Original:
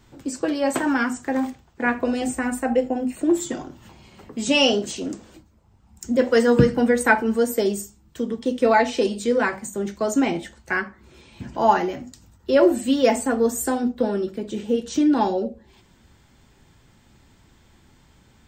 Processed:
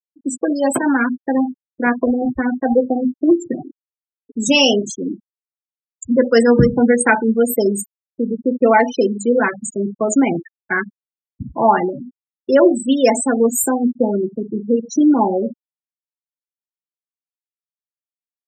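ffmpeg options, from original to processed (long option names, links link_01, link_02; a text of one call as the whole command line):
ffmpeg -i in.wav -filter_complex "[0:a]asettb=1/sr,asplit=3[link_01][link_02][link_03];[link_01]atrim=end=1.124[link_04];[link_02]atrim=start=1.12:end=3.67,asetpts=PTS-STARTPTS,afade=type=in:duration=0.004:curve=qsin,afade=type=out:start_time=2.546:duration=0.004:curve=qsin,aemphasis=mode=reproduction:type=75fm[link_05];[link_03]atrim=start=3.666[link_06];[link_04][link_05]acrossfade=duration=0.004:curve1=hsin:curve2=qsin[link_07];[link_07][link_06]acrossfade=duration=0.004:curve1=qsin:curve2=hsin,asettb=1/sr,asplit=3[link_08][link_09][link_10];[link_08]atrim=end=12.764[link_11];[link_09]atrim=start=12.76:end=13.27,asetpts=PTS-STARTPTS,afade=type=in:duration=0.004:curve=qsin,afade=type=out:start_time=0.506:duration=0.004:curve=qsin,equalizer=frequency=86:width_type=o:width=1.9:gain=-6.5[link_12];[link_10]atrim=start=13.266[link_13];[link_11][link_12]acrossfade=duration=0.004:curve1=hsin:curve2=qsin[link_14];[link_14][link_13]acrossfade=duration=0.004:curve1=qsin:curve2=hsin,bass=frequency=250:gain=3,treble=frequency=4000:gain=6,afftfilt=real='re*gte(hypot(re,im),0.1)':imag='im*gte(hypot(re,im),0.1)':win_size=1024:overlap=0.75,alimiter=level_in=5.5dB:limit=-1dB:release=50:level=0:latency=1,volume=-1dB" out.wav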